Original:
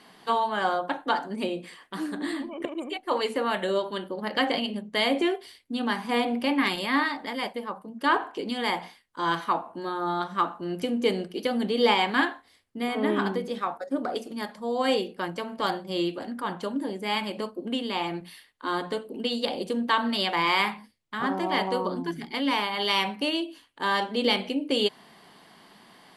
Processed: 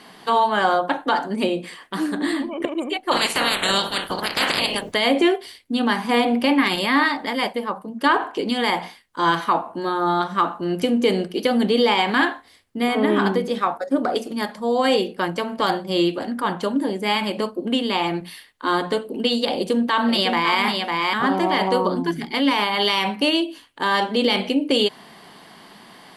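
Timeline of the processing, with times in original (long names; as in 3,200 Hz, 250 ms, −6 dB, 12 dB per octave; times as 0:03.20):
0:03.11–0:04.93: ceiling on every frequency bin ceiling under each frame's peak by 29 dB
0:19.53–0:20.58: delay throw 550 ms, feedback 10%, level −6.5 dB
whole clip: boost into a limiter +15.5 dB; level −7.5 dB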